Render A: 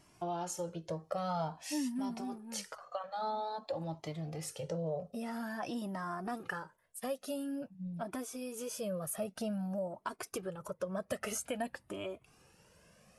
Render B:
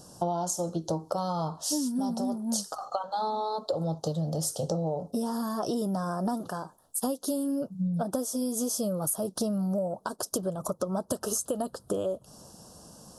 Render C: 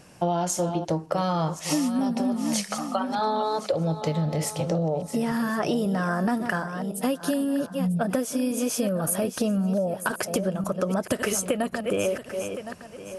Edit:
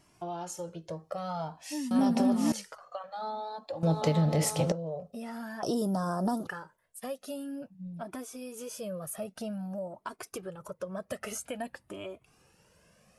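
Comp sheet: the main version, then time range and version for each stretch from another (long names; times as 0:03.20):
A
0:01.91–0:02.52: punch in from C
0:03.83–0:04.72: punch in from C
0:05.63–0:06.47: punch in from B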